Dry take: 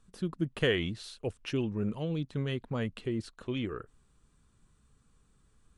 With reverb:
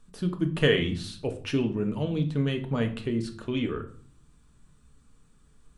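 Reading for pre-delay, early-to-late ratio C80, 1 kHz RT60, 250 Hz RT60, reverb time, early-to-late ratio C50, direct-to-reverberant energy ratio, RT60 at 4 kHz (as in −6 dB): 3 ms, 17.0 dB, 0.45 s, 0.75 s, 0.45 s, 12.5 dB, 5.5 dB, 0.35 s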